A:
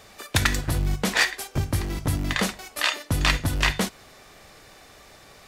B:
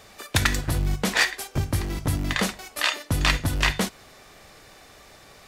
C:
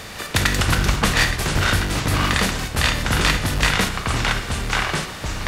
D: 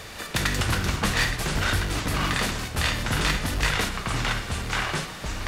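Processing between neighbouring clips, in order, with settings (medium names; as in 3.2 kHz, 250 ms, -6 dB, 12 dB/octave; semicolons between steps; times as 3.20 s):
no audible change
spectral levelling over time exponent 0.6; ever faster or slower copies 155 ms, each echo -4 st, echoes 2
in parallel at -7 dB: hard clipper -17.5 dBFS, distortion -10 dB; on the sum: flange 0.54 Hz, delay 1.6 ms, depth 9.9 ms, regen -45%; trim -4 dB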